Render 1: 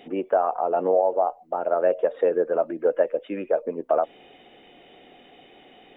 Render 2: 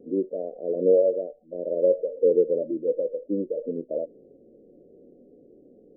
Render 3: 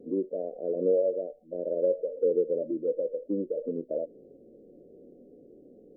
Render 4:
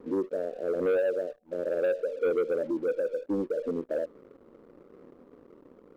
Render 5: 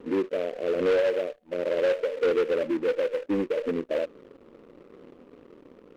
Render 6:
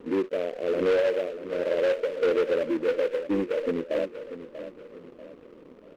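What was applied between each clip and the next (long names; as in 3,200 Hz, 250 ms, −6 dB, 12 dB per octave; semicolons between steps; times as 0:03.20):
Butterworth low-pass 570 Hz 72 dB per octave; harmonic and percussive parts rebalanced percussive −17 dB; level +5.5 dB
downward compressor 1.5 to 1, threshold −31 dBFS, peak gain reduction 6.5 dB
leveller curve on the samples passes 2; level −5 dB
short delay modulated by noise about 1,700 Hz, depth 0.041 ms; level +3 dB
repeating echo 639 ms, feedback 40%, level −12 dB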